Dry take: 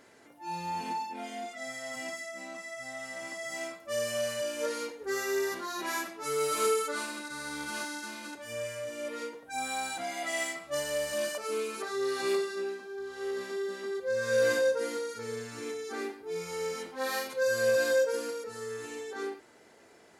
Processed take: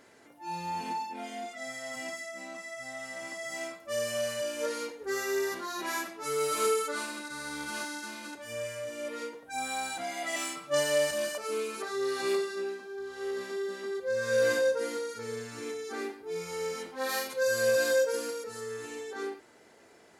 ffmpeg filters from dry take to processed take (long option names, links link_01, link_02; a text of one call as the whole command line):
ffmpeg -i in.wav -filter_complex "[0:a]asettb=1/sr,asplit=3[link_01][link_02][link_03];[link_01]atrim=end=10.354[link_04];[link_02]atrim=start=10.35:end=11.11,asetpts=PTS-STARTPTS,afade=type=in:duration=0.004:curve=qsin,afade=type=out:start_time=0.756:duration=0.004:curve=qsin,aecho=1:1:6.8:0.94,atrim=end_sample=33516[link_05];[link_03]atrim=start=11.106[link_06];[link_04][link_05]acrossfade=duration=0.004:curve1=hsin:curve2=qsin[link_07];[link_07][link_06]acrossfade=duration=0.004:curve1=qsin:curve2=hsin,asettb=1/sr,asplit=3[link_08][link_09][link_10];[link_08]atrim=end=17.094[link_11];[link_09]atrim=start=17.09:end=18.61,asetpts=PTS-STARTPTS,afade=type=in:duration=0.004:curve=qsin,afade=type=out:start_time=1.516:duration=0.004:curve=qsin,highshelf=frequency=4500:gain=4.5[link_12];[link_10]atrim=start=18.606[link_13];[link_11][link_12]acrossfade=duration=0.004:curve1=hsin:curve2=qsin[link_14];[link_14][link_13]acrossfade=duration=0.004:curve1=qsin:curve2=hsin" out.wav